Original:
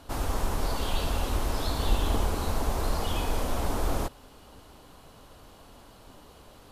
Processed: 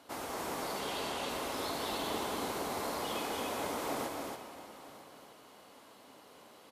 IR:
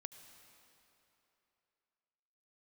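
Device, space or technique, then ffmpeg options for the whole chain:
stadium PA: -filter_complex "[0:a]asettb=1/sr,asplit=3[a][b][c];[a]atrim=end=0.804[d];[b]atrim=start=0.8:end=1.29,asetpts=PTS-STARTPTS,afade=t=in:d=0.004:c=qsin,afade=t=out:st=0.486:d=0.004:c=qsin,lowpass=11k[e];[c]atrim=start=1.286[f];[d][e]acrossfade=d=0.004:c1=hsin:c2=qsin[g];[g][f]acrossfade=d=0.004:c1=qsin:c2=hsin,highpass=250,equalizer=f=2.1k:t=o:w=0.2:g=5.5,aecho=1:1:227.4|279.9:0.282|0.631[h];[1:a]atrim=start_sample=2205[i];[h][i]afir=irnorm=-1:irlink=0,aecho=1:1:949:0.119"

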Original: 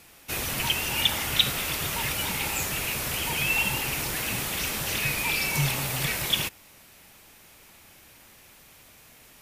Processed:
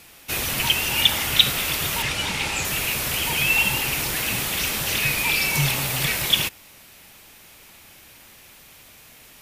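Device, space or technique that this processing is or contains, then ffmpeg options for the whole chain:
presence and air boost: -filter_complex "[0:a]asettb=1/sr,asplit=3[a][b][c];[a]atrim=end=2.024[d];[b]atrim=start=2.02:end=2.65,asetpts=PTS-STARTPTS,afade=t=in:d=0.004:c=qsin,afade=t=out:st=0.626:d=0.004:c=qsin,lowpass=7.7k[e];[c]atrim=start=2.646[f];[d][e]acrossfade=d=0.004:c1=hsin:c2=qsin[g];[g][f]acrossfade=d=0.004:c1=qsin:c2=hsin,equalizer=f=3.3k:t=o:w=1.5:g=3,highshelf=f=12k:g=3.5,volume=3dB"

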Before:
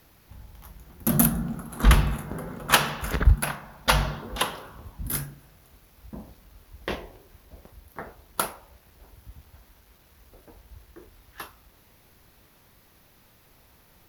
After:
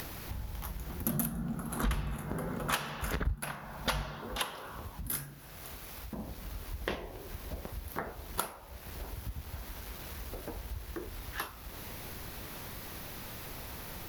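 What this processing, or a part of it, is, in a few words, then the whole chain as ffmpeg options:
upward and downward compression: -filter_complex "[0:a]acompressor=mode=upward:threshold=-39dB:ratio=2.5,acompressor=threshold=-39dB:ratio=4,asettb=1/sr,asplit=3[a][b][c];[a]atrim=end=4.024[d];[b]atrim=start=4.02:end=6.19,asetpts=PTS-STARTPTS,afade=t=in:d=0.004:c=qsin,afade=t=out:st=2.166:d=0.004:c=qsin,lowshelf=f=360:g=-6[e];[c]atrim=start=6.186[f];[d][e]acrossfade=d=0.004:c1=hsin:c2=qsin[g];[g][f]acrossfade=d=0.004:c1=qsin:c2=hsin,volume=5.5dB"

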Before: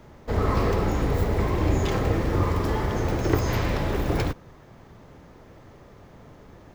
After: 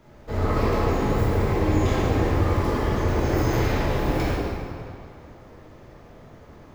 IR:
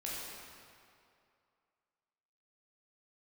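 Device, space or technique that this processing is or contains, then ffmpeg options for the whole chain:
stairwell: -filter_complex "[1:a]atrim=start_sample=2205[a];[0:a][a]afir=irnorm=-1:irlink=0"

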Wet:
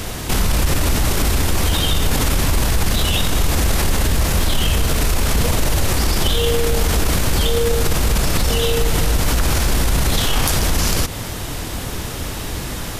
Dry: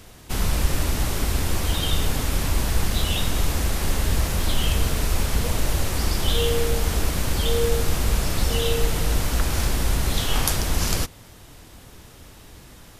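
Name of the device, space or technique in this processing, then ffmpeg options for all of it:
loud club master: -af "acompressor=threshold=-24dB:ratio=2,asoftclip=type=hard:threshold=-15dB,alimiter=level_in=27dB:limit=-1dB:release=50:level=0:latency=1,volume=-7.5dB"

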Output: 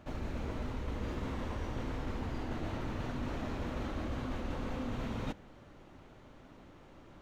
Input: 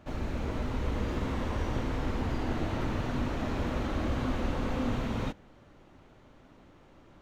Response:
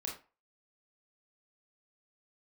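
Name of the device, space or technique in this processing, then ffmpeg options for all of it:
compression on the reversed sound: -af "areverse,acompressor=threshold=-35dB:ratio=6,areverse,volume=1dB"

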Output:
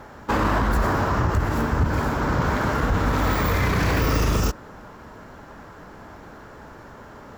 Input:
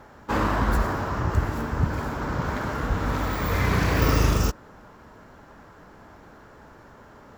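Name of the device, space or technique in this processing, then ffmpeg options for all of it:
stacked limiters: -af "alimiter=limit=-14dB:level=0:latency=1:release=131,alimiter=limit=-18.5dB:level=0:latency=1:release=20,volume=6dB"

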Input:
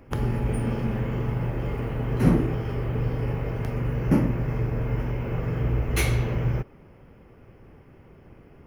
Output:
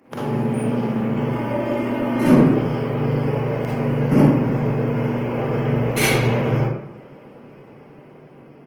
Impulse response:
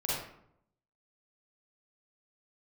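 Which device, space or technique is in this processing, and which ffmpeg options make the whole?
far-field microphone of a smart speaker: -filter_complex "[0:a]asplit=3[a][b][c];[a]afade=t=out:st=1.27:d=0.02[d];[b]aecho=1:1:3.3:0.91,afade=t=in:st=1.27:d=0.02,afade=t=out:st=2.26:d=0.02[e];[c]afade=t=in:st=2.26:d=0.02[f];[d][e][f]amix=inputs=3:normalize=0[g];[1:a]atrim=start_sample=2205[h];[g][h]afir=irnorm=-1:irlink=0,highpass=f=160:w=0.5412,highpass=f=160:w=1.3066,dynaudnorm=f=540:g=7:m=5.5dB" -ar 48000 -c:a libopus -b:a 20k

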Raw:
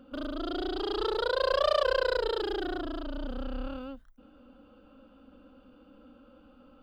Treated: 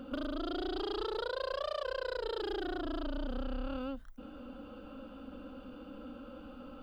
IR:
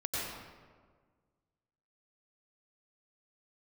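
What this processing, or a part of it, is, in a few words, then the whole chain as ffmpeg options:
serial compression, peaks first: -af "acompressor=threshold=-37dB:ratio=6,acompressor=threshold=-49dB:ratio=1.5,volume=8dB"

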